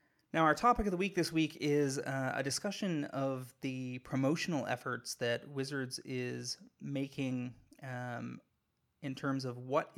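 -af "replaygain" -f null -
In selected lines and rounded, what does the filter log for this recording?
track_gain = +15.1 dB
track_peak = 0.108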